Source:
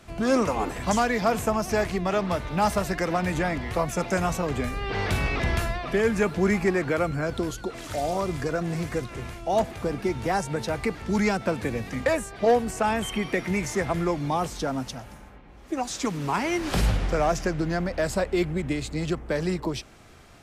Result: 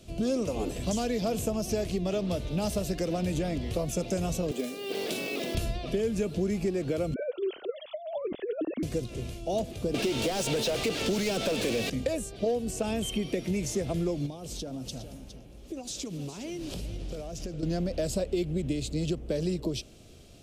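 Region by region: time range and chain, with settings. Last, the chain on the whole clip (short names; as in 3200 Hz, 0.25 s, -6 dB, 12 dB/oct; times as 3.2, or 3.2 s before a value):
4.51–5.55 HPF 240 Hz 24 dB/oct + short-mantissa float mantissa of 2-bit
7.14–8.83 sine-wave speech + negative-ratio compressor -29 dBFS, ratio -0.5
9.94–11.9 tilt +1.5 dB/oct + overdrive pedal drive 34 dB, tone 2400 Hz, clips at -14 dBFS
14.26–17.63 compressor 12:1, threshold -32 dBFS + echo 0.411 s -11.5 dB
whole clip: band shelf 1300 Hz -15 dB; compressor, threshold -25 dBFS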